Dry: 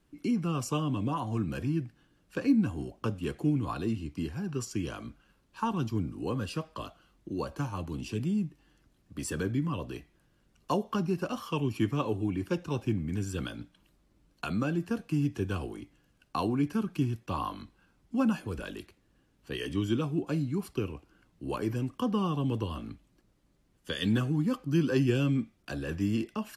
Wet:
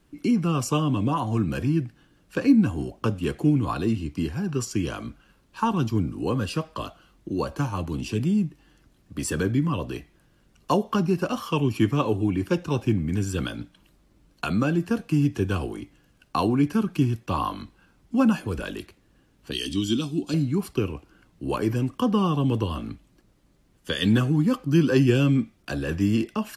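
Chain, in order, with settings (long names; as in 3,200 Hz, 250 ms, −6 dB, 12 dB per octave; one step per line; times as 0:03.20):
0:19.51–0:20.34: octave-band graphic EQ 125/250/500/1,000/2,000/4,000/8,000 Hz −9/+4/−10/−7/−9/+11/+5 dB
level +7 dB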